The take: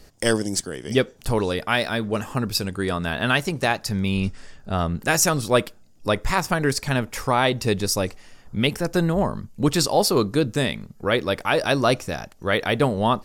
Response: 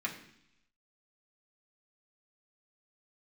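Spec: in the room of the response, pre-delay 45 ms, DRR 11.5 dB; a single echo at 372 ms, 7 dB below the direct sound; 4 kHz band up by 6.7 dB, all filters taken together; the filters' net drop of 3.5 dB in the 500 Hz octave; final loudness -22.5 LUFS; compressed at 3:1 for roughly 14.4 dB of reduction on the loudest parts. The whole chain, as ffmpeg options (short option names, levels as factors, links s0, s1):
-filter_complex "[0:a]equalizer=f=500:t=o:g=-4.5,equalizer=f=4000:t=o:g=8.5,acompressor=threshold=0.02:ratio=3,aecho=1:1:372:0.447,asplit=2[s0][s1];[1:a]atrim=start_sample=2205,adelay=45[s2];[s1][s2]afir=irnorm=-1:irlink=0,volume=0.168[s3];[s0][s3]amix=inputs=2:normalize=0,volume=3.35"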